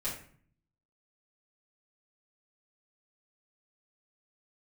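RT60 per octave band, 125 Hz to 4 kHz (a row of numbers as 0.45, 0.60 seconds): 0.95, 0.80, 0.50, 0.50, 0.50, 0.35 seconds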